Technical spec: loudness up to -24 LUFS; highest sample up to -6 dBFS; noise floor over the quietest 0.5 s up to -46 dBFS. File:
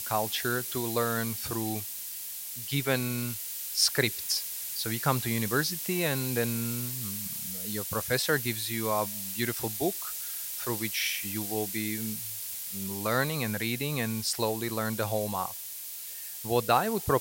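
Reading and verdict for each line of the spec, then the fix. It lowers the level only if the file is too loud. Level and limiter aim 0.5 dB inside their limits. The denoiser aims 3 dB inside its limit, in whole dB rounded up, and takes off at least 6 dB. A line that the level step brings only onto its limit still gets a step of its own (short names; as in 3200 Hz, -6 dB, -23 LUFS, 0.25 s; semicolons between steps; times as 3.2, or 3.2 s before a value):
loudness -30.0 LUFS: OK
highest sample -10.0 dBFS: OK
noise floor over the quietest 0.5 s -40 dBFS: fail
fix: denoiser 9 dB, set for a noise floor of -40 dBFS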